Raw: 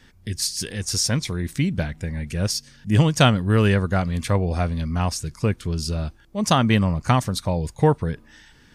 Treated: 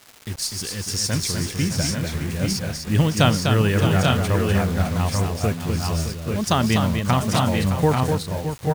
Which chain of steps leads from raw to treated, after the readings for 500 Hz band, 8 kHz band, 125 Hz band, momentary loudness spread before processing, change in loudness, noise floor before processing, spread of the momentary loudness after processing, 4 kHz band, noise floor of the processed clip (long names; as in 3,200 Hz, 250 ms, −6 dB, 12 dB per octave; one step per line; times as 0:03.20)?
+1.0 dB, +1.5 dB, +1.0 dB, 10 LU, +1.0 dB, −53 dBFS, 8 LU, +1.0 dB, −35 dBFS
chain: bit-depth reduction 6 bits, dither none
multi-tap delay 249/614/819/840/871 ms −5.5/−10.5/−12.5/−4/−9 dB
surface crackle 540 per second −30 dBFS
level −2 dB